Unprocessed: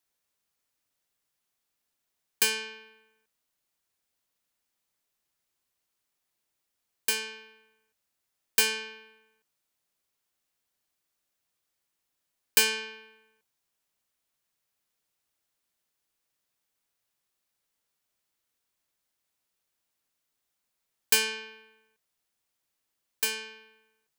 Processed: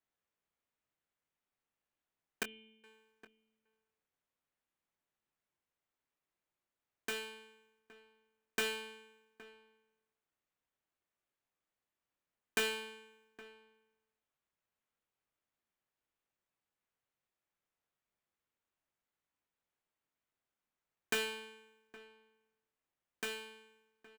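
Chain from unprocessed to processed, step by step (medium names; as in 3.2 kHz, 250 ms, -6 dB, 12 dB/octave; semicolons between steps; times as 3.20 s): median filter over 9 samples; 2.43–2.84 s: cascade formant filter i; doubling 23 ms -10.5 dB; echo from a far wall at 140 m, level -18 dB; trim -5.5 dB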